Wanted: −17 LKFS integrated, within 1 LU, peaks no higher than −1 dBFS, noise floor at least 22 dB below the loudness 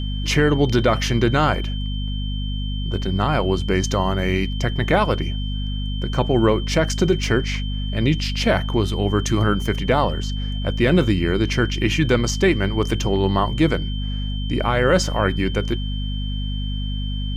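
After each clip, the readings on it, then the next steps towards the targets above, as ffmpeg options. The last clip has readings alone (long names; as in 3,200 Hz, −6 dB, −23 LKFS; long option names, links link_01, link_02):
mains hum 50 Hz; hum harmonics up to 250 Hz; level of the hum −22 dBFS; interfering tone 3,100 Hz; level of the tone −34 dBFS; integrated loudness −21.0 LKFS; sample peak −5.5 dBFS; target loudness −17.0 LKFS
→ -af "bandreject=frequency=50:width_type=h:width=6,bandreject=frequency=100:width_type=h:width=6,bandreject=frequency=150:width_type=h:width=6,bandreject=frequency=200:width_type=h:width=6,bandreject=frequency=250:width_type=h:width=6"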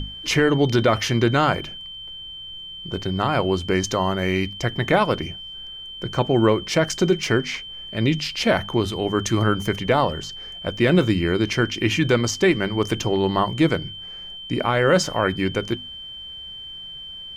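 mains hum none found; interfering tone 3,100 Hz; level of the tone −34 dBFS
→ -af "bandreject=frequency=3100:width=30"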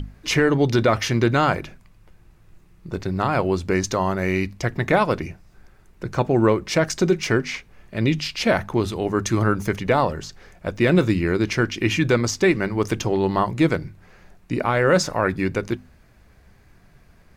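interfering tone none found; integrated loudness −21.5 LKFS; sample peak −6.5 dBFS; target loudness −17.0 LKFS
→ -af "volume=4.5dB"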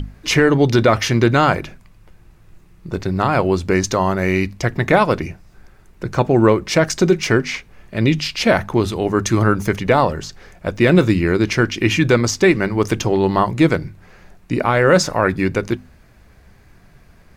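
integrated loudness −17.0 LKFS; sample peak −2.0 dBFS; background noise floor −49 dBFS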